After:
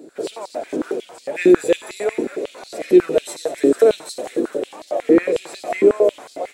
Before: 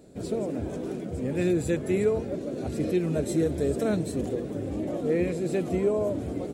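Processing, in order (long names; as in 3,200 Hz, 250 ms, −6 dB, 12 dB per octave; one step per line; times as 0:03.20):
delay with a high-pass on its return 92 ms, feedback 82%, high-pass 2,300 Hz, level −11.5 dB
high-pass on a step sequencer 11 Hz 310–4,400 Hz
level +6 dB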